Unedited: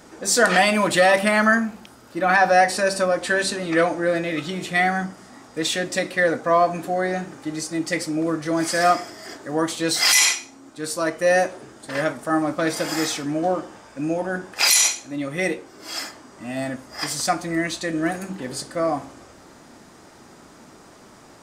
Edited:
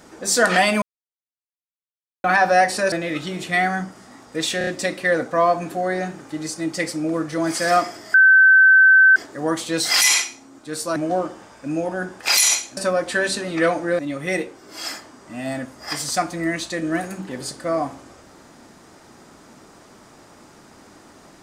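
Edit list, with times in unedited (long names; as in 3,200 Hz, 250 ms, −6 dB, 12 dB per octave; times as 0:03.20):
0:00.82–0:02.24: silence
0:02.92–0:04.14: move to 0:15.10
0:05.80: stutter 0.03 s, 4 plays
0:09.27: insert tone 1,540 Hz −8 dBFS 1.02 s
0:11.07–0:13.29: remove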